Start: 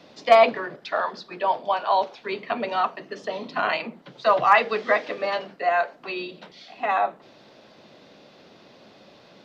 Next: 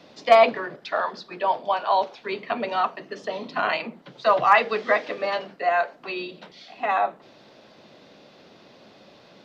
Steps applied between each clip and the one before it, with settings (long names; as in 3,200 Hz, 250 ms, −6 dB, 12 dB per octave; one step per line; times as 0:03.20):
no processing that can be heard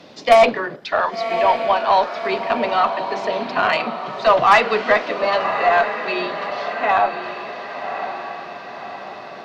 feedback delay with all-pass diffusion 1,110 ms, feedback 51%, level −9 dB
harmonic generator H 4 −25 dB, 5 −19 dB, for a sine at −4 dBFS
level +2.5 dB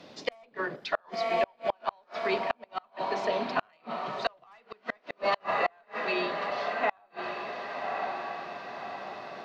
gate with flip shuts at −9 dBFS, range −37 dB
level −6.5 dB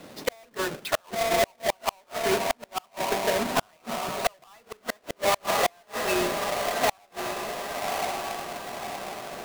each half-wave held at its own peak